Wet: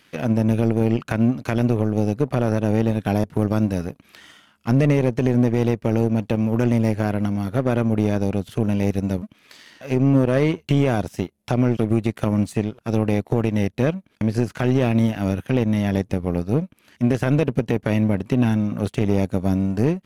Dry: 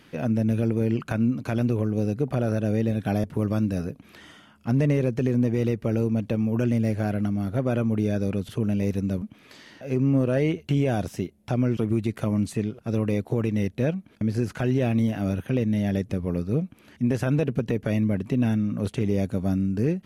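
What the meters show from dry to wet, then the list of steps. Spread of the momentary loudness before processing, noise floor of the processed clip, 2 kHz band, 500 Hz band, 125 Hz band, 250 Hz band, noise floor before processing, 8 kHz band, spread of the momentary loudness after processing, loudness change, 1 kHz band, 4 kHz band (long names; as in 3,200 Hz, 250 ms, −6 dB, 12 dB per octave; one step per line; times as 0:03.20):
5 LU, −59 dBFS, +5.5 dB, +4.5 dB, +3.5 dB, +4.0 dB, −55 dBFS, +4.0 dB, 6 LU, +4.0 dB, +7.5 dB, +5.5 dB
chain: power curve on the samples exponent 1.4
one half of a high-frequency compander encoder only
level +6.5 dB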